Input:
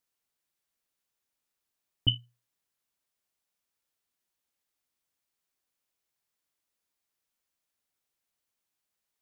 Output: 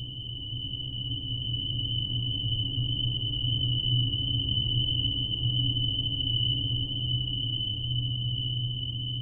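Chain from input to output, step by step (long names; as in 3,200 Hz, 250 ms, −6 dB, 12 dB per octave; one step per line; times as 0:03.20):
low-shelf EQ 81 Hz +8 dB
flutter between parallel walls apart 11.2 metres, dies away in 0.86 s
extreme stretch with random phases 15×, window 1.00 s, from 0:01.79
level +1 dB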